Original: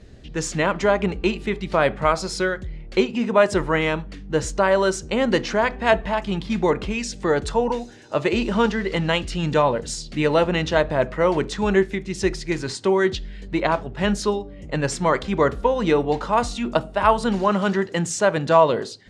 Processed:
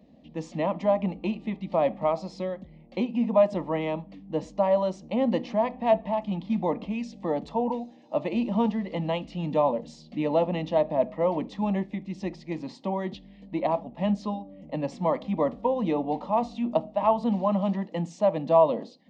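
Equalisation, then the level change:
high-pass filter 160 Hz 12 dB per octave
head-to-tape spacing loss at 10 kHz 35 dB
phaser with its sweep stopped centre 400 Hz, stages 6
0.0 dB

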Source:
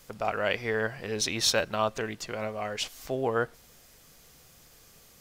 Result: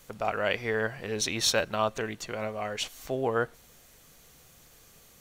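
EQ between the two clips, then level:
notch filter 5,000 Hz, Q 10
0.0 dB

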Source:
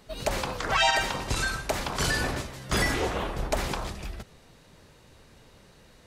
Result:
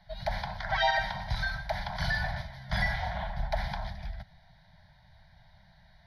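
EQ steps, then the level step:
moving average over 6 samples
elliptic band-stop filter 190–650 Hz, stop band 40 dB
phaser with its sweep stopped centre 1,800 Hz, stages 8
0.0 dB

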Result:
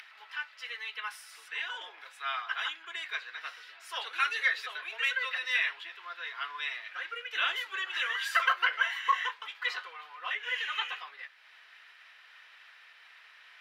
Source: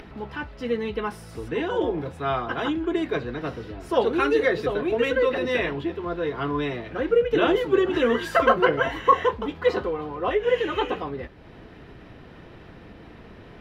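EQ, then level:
four-pole ladder high-pass 1,300 Hz, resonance 20%
+5.0 dB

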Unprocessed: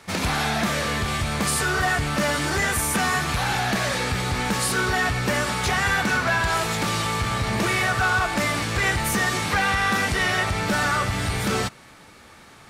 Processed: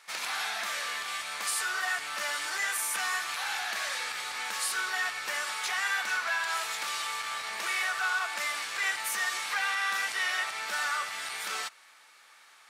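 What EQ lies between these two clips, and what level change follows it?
high-pass filter 1,100 Hz 12 dB per octave
−6.0 dB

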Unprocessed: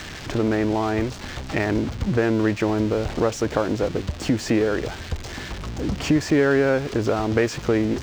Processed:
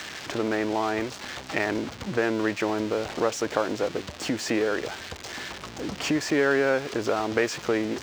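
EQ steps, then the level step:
high-pass filter 520 Hz 6 dB per octave
0.0 dB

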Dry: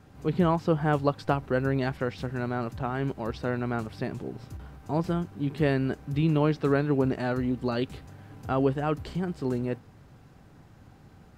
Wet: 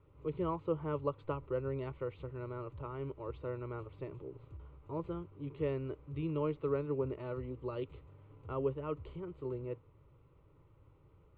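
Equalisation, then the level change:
low-pass filter 1,400 Hz 6 dB per octave
high-frequency loss of the air 88 metres
phaser with its sweep stopped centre 1,100 Hz, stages 8
−6.5 dB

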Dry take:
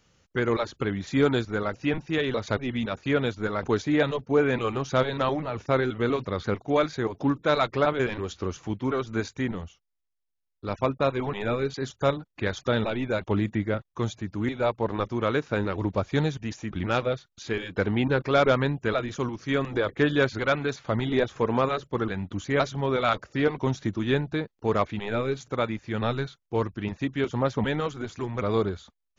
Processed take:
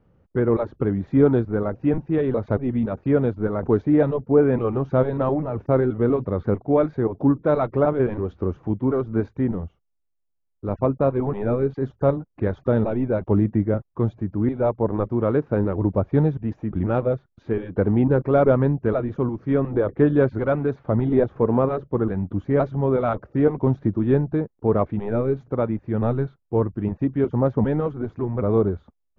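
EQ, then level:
Bessel low-pass filter 610 Hz, order 2
+7.0 dB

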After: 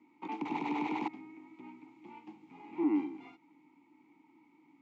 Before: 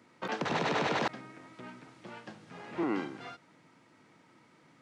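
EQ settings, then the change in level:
formant filter u
parametric band 7,100 Hz +9 dB 0.35 octaves
+7.0 dB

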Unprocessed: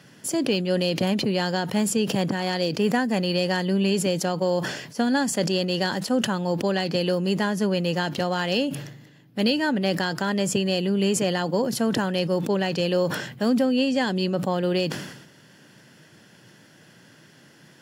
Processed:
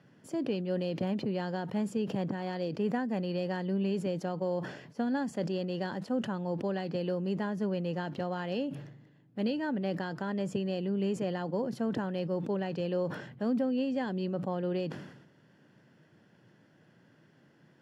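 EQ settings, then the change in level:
low-pass filter 1,100 Hz 6 dB per octave
−8.0 dB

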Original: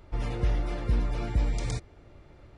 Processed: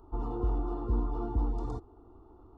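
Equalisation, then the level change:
Savitzky-Golay smoothing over 65 samples
low-shelf EQ 120 Hz −7.5 dB
phaser with its sweep stopped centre 570 Hz, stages 6
+4.0 dB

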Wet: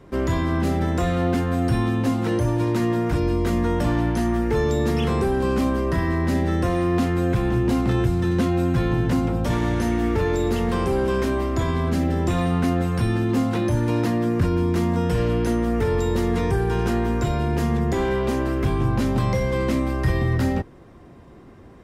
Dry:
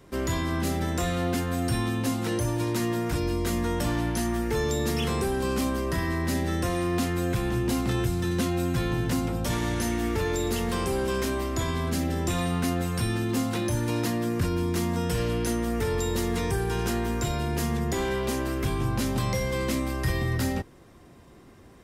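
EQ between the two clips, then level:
high-shelf EQ 2,500 Hz −9.5 dB
high-shelf EQ 6,700 Hz −5.5 dB
+6.0 dB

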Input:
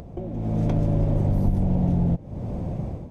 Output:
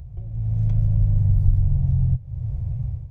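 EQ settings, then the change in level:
drawn EQ curve 130 Hz 0 dB, 210 Hz −30 dB, 2,200 Hz −17 dB
+5.5 dB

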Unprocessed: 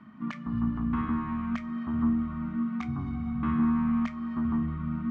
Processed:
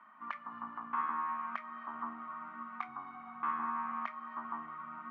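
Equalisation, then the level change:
four-pole ladder band-pass 1,200 Hz, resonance 35%
+11.0 dB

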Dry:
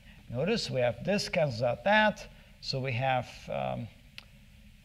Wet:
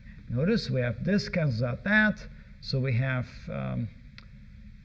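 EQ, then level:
head-to-tape spacing loss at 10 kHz 20 dB
notch filter 590 Hz, Q 12
phaser with its sweep stopped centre 2,900 Hz, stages 6
+8.0 dB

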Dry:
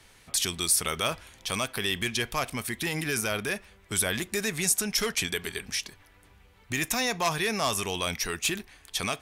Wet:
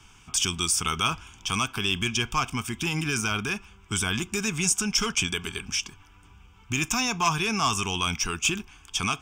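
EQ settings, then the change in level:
high-shelf EQ 9,900 Hz −5.5 dB
phaser with its sweep stopped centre 2,800 Hz, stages 8
+6.0 dB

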